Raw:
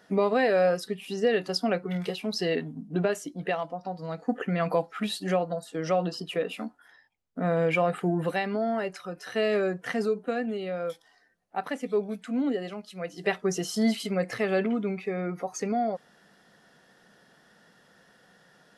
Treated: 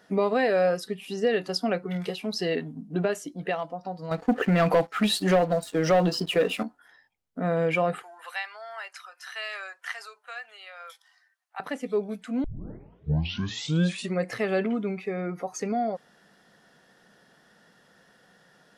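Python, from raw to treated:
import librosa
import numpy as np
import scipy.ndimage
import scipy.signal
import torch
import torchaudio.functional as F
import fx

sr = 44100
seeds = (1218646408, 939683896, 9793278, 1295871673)

y = fx.leveller(x, sr, passes=2, at=(4.11, 6.63))
y = fx.highpass(y, sr, hz=970.0, slope=24, at=(8.02, 11.6))
y = fx.edit(y, sr, fx.tape_start(start_s=12.44, length_s=1.78), tone=tone)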